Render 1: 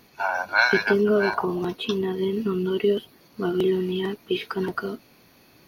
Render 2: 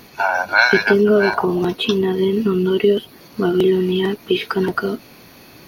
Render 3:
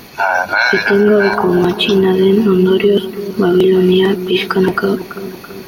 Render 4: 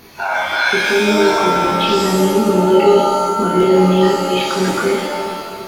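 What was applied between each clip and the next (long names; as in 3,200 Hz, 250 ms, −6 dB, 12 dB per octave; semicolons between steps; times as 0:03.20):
dynamic equaliser 1,100 Hz, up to −4 dB, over −42 dBFS, Q 4.2; in parallel at +3 dB: downward compressor, threshold −31 dBFS, peak gain reduction 15.5 dB; on the sum: level +4 dB
brickwall limiter −11 dBFS, peak gain reduction 9 dB; bucket-brigade delay 332 ms, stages 4,096, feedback 53%, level −13 dB; level +7.5 dB
multi-voice chorus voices 4, 0.39 Hz, delay 25 ms, depth 2.6 ms; reverb with rising layers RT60 1.2 s, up +7 semitones, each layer −2 dB, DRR 1.5 dB; level −3.5 dB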